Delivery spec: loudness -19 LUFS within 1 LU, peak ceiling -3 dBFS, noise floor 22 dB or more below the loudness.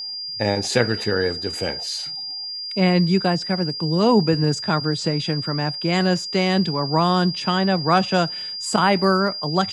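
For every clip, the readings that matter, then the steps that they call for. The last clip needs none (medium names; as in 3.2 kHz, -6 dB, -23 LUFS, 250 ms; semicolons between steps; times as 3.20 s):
tick rate 44 per s; steady tone 4.8 kHz; tone level -28 dBFS; loudness -20.5 LUFS; peak level -3.5 dBFS; loudness target -19.0 LUFS
-> de-click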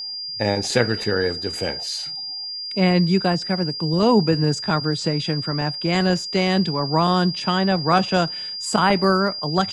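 tick rate 0 per s; steady tone 4.8 kHz; tone level -28 dBFS
-> band-stop 4.8 kHz, Q 30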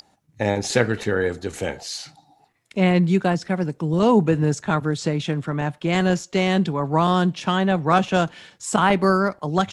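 steady tone not found; loudness -21.5 LUFS; peak level -3.5 dBFS; loudness target -19.0 LUFS
-> trim +2.5 dB; peak limiter -3 dBFS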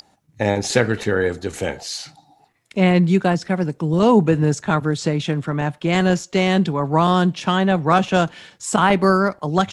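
loudness -19.0 LUFS; peak level -3.0 dBFS; noise floor -59 dBFS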